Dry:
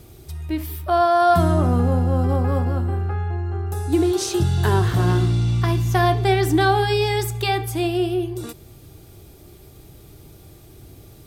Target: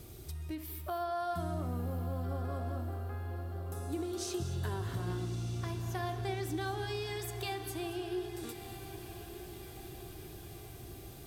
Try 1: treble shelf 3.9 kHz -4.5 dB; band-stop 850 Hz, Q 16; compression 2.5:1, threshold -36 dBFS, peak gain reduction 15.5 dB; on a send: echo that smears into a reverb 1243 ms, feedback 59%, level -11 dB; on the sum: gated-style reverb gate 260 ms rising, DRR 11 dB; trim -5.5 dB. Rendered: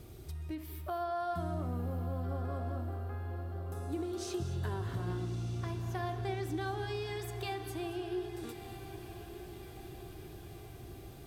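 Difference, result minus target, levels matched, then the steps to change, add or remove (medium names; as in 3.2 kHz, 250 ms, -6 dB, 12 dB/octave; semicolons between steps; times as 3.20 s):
8 kHz band -5.5 dB
change: treble shelf 3.9 kHz +3 dB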